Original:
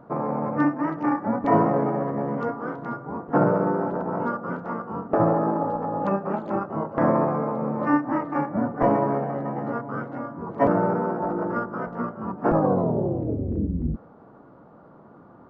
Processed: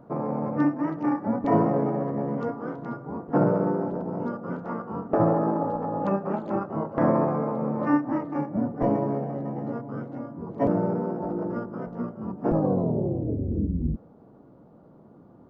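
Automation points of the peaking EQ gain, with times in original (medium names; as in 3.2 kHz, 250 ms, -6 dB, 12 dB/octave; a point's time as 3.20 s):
peaking EQ 1.4 kHz 1.9 oct
3.68 s -7 dB
4.14 s -14.5 dB
4.71 s -4 dB
7.85 s -4 dB
8.50 s -12.5 dB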